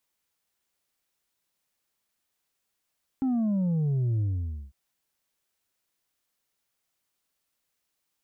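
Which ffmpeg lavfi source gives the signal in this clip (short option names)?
-f lavfi -i "aevalsrc='0.0668*clip((1.5-t)/0.52,0,1)*tanh(1.5*sin(2*PI*270*1.5/log(65/270)*(exp(log(65/270)*t/1.5)-1)))/tanh(1.5)':d=1.5:s=44100"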